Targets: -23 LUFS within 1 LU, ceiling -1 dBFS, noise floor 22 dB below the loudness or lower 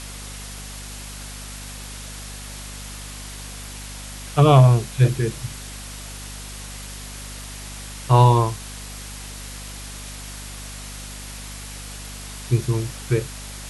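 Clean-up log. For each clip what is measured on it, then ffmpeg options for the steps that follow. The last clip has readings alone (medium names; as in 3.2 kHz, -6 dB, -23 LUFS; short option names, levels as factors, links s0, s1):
hum 50 Hz; highest harmonic 250 Hz; hum level -35 dBFS; noise floor -36 dBFS; noise floor target -41 dBFS; loudness -19.0 LUFS; peak level -1.5 dBFS; loudness target -23.0 LUFS
-> -af "bandreject=f=50:t=h:w=6,bandreject=f=100:t=h:w=6,bandreject=f=150:t=h:w=6,bandreject=f=200:t=h:w=6,bandreject=f=250:t=h:w=6"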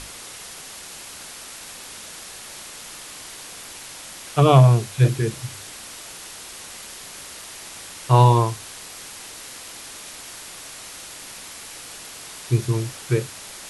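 hum not found; noise floor -39 dBFS; noise floor target -42 dBFS
-> -af "afftdn=nr=6:nf=-39"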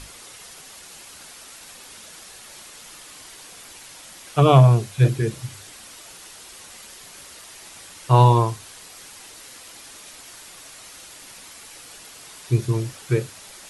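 noise floor -44 dBFS; loudness -19.0 LUFS; peak level -2.0 dBFS; loudness target -23.0 LUFS
-> -af "volume=0.631"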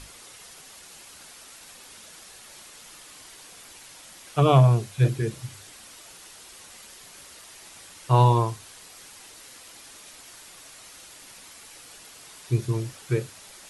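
loudness -23.0 LUFS; peak level -6.0 dBFS; noise floor -48 dBFS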